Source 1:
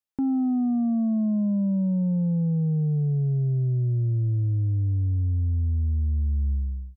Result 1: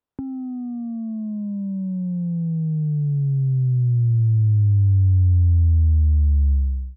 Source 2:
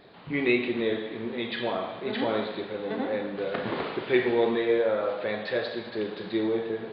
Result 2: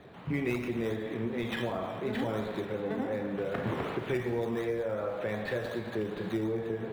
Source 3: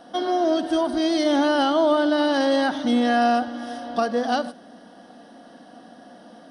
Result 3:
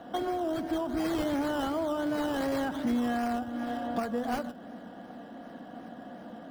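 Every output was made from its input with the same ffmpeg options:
-filter_complex "[0:a]equalizer=f=94:w=0.73:g=8.5,acrossover=split=140|3600[a][b][c];[b]acompressor=threshold=-30dB:ratio=6[d];[c]acrusher=samples=16:mix=1:aa=0.000001:lfo=1:lforange=9.6:lforate=2.7[e];[a][d][e]amix=inputs=3:normalize=0"

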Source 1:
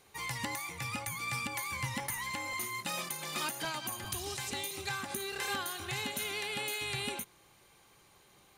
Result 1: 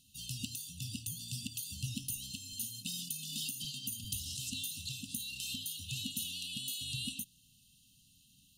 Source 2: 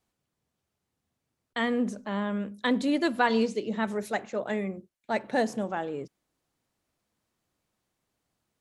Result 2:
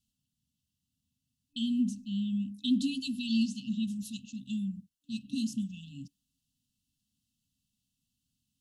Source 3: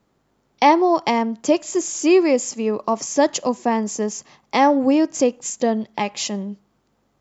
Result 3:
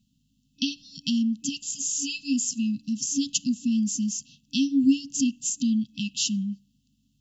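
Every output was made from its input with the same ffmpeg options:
-af "afftfilt=real='re*(1-between(b*sr/4096,280,2600))':imag='im*(1-between(b*sr/4096,280,2600))':win_size=4096:overlap=0.75"

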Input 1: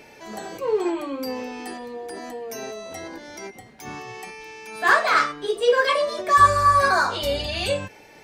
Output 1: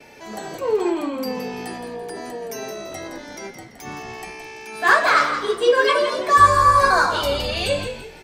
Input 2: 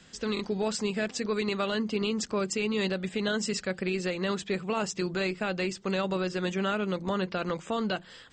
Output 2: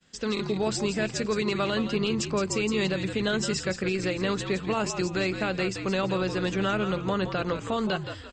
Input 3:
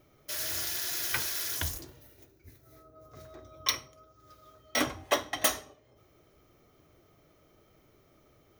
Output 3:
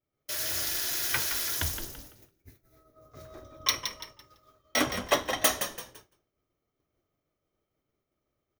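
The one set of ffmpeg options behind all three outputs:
-filter_complex "[0:a]asplit=5[a][b][c][d][e];[b]adelay=168,afreqshift=-63,volume=-8.5dB[f];[c]adelay=336,afreqshift=-126,volume=-17.6dB[g];[d]adelay=504,afreqshift=-189,volume=-26.7dB[h];[e]adelay=672,afreqshift=-252,volume=-35.9dB[i];[a][f][g][h][i]amix=inputs=5:normalize=0,agate=range=-33dB:threshold=-48dB:ratio=3:detection=peak,volume=2dB"

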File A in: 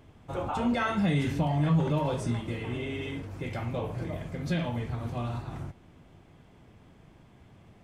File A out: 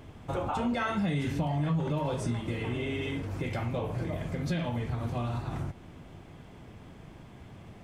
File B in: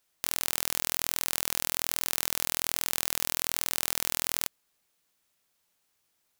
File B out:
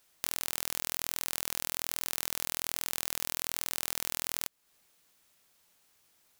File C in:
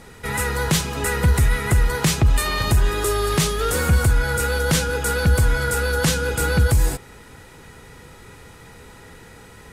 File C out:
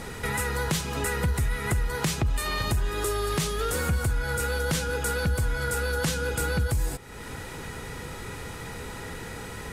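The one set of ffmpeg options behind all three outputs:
-af "acompressor=threshold=-38dB:ratio=2.5,volume=6.5dB"

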